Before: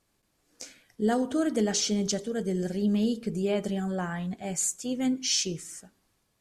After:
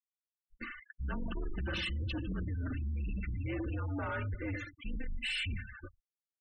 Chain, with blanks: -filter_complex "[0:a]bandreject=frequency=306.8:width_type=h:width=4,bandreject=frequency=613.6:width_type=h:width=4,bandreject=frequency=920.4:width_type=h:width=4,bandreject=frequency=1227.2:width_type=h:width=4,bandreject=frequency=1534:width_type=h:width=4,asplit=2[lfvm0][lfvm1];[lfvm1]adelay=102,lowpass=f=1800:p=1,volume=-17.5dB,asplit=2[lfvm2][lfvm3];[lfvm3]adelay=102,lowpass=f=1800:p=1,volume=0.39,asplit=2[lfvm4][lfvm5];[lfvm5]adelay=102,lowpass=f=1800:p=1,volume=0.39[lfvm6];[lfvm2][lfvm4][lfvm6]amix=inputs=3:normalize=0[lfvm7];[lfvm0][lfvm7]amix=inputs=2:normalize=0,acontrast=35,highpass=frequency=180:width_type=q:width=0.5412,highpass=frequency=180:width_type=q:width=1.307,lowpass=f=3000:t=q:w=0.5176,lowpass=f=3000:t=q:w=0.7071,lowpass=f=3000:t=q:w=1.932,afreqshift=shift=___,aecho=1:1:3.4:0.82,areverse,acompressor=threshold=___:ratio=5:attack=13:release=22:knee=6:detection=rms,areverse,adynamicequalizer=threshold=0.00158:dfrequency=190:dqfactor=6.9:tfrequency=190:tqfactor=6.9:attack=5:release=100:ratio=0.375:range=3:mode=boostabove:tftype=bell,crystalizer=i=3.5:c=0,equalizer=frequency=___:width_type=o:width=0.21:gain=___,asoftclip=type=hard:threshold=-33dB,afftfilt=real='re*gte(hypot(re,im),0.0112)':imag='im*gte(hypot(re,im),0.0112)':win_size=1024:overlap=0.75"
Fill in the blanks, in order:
-280, -35dB, 1600, 6.5